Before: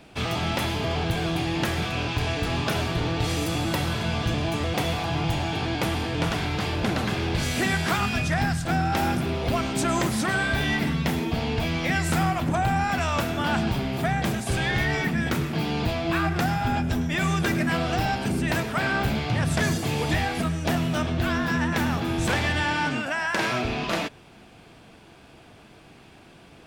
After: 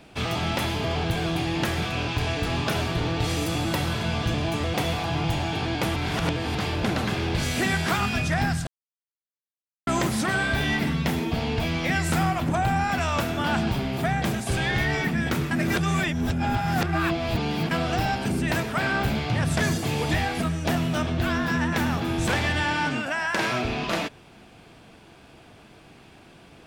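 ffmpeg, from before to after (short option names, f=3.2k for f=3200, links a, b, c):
-filter_complex "[0:a]asplit=7[a][b][c][d][e][f][g];[a]atrim=end=5.962[h];[b]atrim=start=5.958:end=6.552,asetpts=PTS-STARTPTS,areverse[i];[c]atrim=start=6.548:end=8.67,asetpts=PTS-STARTPTS,afade=t=out:st=2.118:d=0.004:c=hsin[j];[d]atrim=start=8.67:end=9.87,asetpts=PTS-STARTPTS,volume=0[k];[e]atrim=start=9.87:end=15.512,asetpts=PTS-STARTPTS,afade=t=in:d=0.004:c=hsin[l];[f]atrim=start=15.508:end=17.712,asetpts=PTS-STARTPTS,areverse[m];[g]atrim=start=17.708[n];[h][i]acrossfade=d=0.004:c1=hsin:c2=hsin[o];[j][k][l]concat=n=3:v=0:a=1[p];[o][p]acrossfade=d=0.004:c1=hsin:c2=hsin[q];[q][m]acrossfade=d=0.004:c1=hsin:c2=hsin[r];[r][n]acrossfade=d=0.004:c1=hsin:c2=hsin"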